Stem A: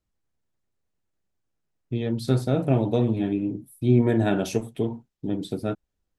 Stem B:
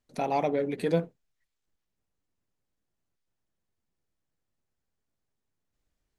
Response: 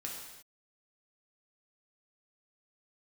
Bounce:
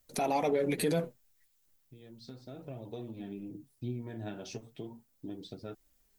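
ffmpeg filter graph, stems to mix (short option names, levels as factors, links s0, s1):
-filter_complex "[0:a]acompressor=threshold=0.0501:ratio=6,lowpass=f=5300:t=q:w=2.2,volume=0.188[s0];[1:a]aemphasis=mode=production:type=50fm,volume=1.19,asplit=2[s1][s2];[s2]apad=whole_len=272621[s3];[s0][s3]sidechaincompress=threshold=0.00447:ratio=5:attack=30:release=1020[s4];[s4][s1]amix=inputs=2:normalize=0,acontrast=81,flanger=delay=1.4:depth=8.6:regen=45:speed=0.36:shape=triangular,alimiter=limit=0.0944:level=0:latency=1:release=98"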